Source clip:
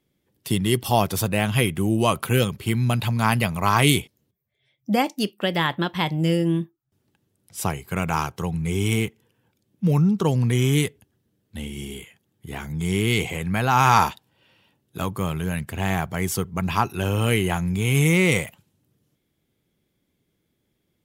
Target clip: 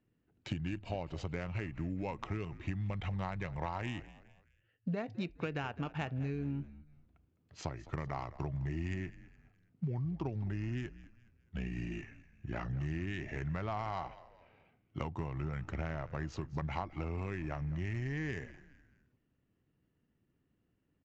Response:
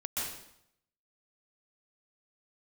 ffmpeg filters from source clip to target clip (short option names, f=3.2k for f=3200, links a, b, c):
-filter_complex "[0:a]acompressor=threshold=-29dB:ratio=20,acrusher=bits=9:mode=log:mix=0:aa=0.000001,asetrate=37084,aresample=44100,atempo=1.18921,adynamicsmooth=sensitivity=3:basefreq=2.3k,asplit=2[a][b];[b]asplit=3[c][d][e];[c]adelay=209,afreqshift=-66,volume=-17dB[f];[d]adelay=418,afreqshift=-132,volume=-24.7dB[g];[e]adelay=627,afreqshift=-198,volume=-32.5dB[h];[f][g][h]amix=inputs=3:normalize=0[i];[a][i]amix=inputs=2:normalize=0,aresample=16000,aresample=44100,volume=-4dB"